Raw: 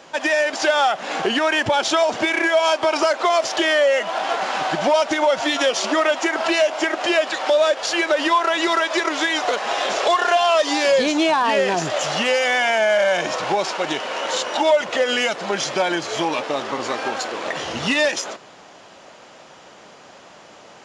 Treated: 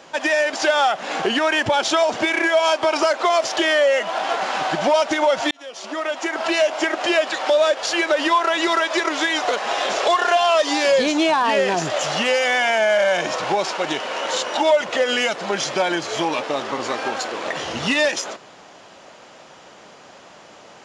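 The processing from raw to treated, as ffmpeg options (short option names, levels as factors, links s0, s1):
-filter_complex "[0:a]asplit=2[s0][s1];[s0]atrim=end=5.51,asetpts=PTS-STARTPTS,afade=t=out:st=5.506:d=0.004:c=hsin[s2];[s1]atrim=start=5.51,asetpts=PTS-STARTPTS,afade=t=in:d=1.16[s3];[s2][s3]concat=n=2:v=0:a=1"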